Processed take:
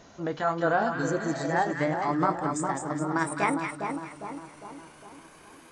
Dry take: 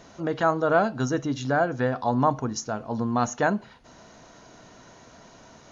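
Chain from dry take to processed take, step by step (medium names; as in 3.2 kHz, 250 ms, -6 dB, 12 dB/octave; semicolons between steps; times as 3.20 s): pitch bend over the whole clip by +9 st starting unshifted; two-band feedback delay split 1.2 kHz, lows 406 ms, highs 209 ms, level -5 dB; spectral replace 1.02–1.45 s, 550–3500 Hz both; trim -2.5 dB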